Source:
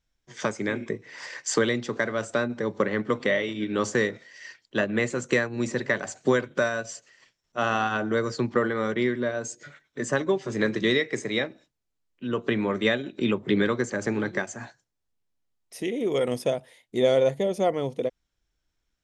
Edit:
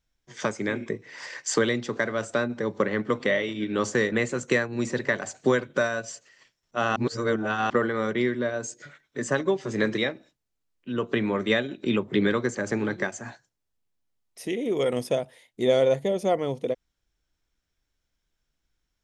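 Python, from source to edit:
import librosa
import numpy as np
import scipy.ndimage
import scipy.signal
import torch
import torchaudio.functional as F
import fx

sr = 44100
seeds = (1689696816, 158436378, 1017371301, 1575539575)

y = fx.edit(x, sr, fx.cut(start_s=4.12, length_s=0.81),
    fx.reverse_span(start_s=7.77, length_s=0.74),
    fx.cut(start_s=10.79, length_s=0.54), tone=tone)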